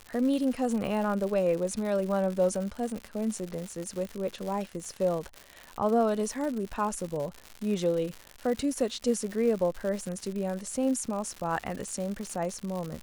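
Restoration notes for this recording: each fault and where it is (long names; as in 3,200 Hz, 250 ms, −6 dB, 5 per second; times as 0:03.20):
surface crackle 160 per second −33 dBFS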